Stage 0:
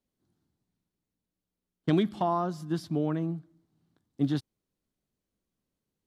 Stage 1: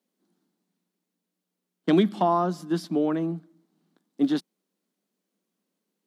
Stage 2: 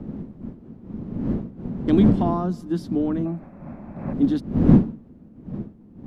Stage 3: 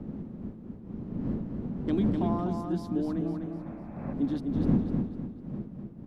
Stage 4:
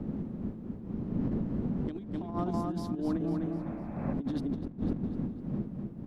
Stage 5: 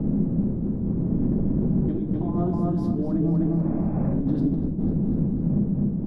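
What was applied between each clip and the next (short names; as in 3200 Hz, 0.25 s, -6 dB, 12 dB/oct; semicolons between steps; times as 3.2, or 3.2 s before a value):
elliptic high-pass 180 Hz, stop band 40 dB; gain +6 dB
wind noise 240 Hz -26 dBFS; spectral gain 3.26–4.13, 520–2700 Hz +12 dB; bell 220 Hz +13 dB 1.2 oct; gain -6 dB
compressor 1.5:1, threshold -29 dBFS, peak gain reduction 7.5 dB; on a send: feedback echo 0.251 s, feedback 40%, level -5 dB; on the sum: gain -4.5 dB
negative-ratio compressor -31 dBFS, ratio -0.5
tilt shelf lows +9.5 dB, about 1100 Hz; limiter -23 dBFS, peak gain reduction 11 dB; reverb RT60 0.60 s, pre-delay 5 ms, DRR 3.5 dB; gain +4.5 dB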